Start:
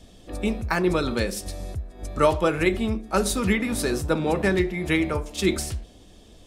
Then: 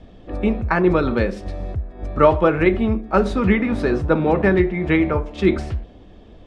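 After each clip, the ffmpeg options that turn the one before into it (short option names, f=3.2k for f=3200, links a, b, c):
-af "lowpass=2k,volume=6dB"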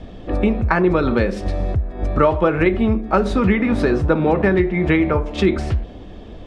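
-af "acompressor=threshold=-24dB:ratio=2.5,volume=8dB"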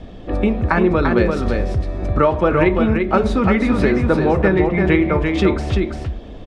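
-af "aecho=1:1:343:0.596"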